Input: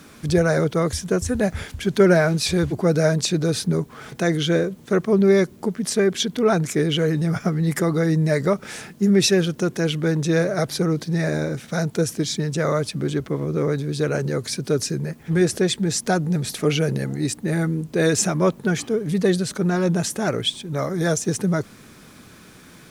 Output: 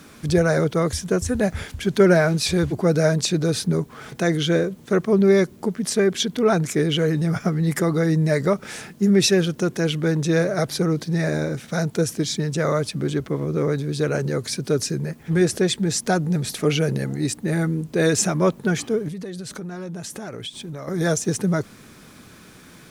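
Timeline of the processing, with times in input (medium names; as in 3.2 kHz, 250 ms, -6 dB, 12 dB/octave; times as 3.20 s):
19.08–20.88 s: compression 12:1, threshold -29 dBFS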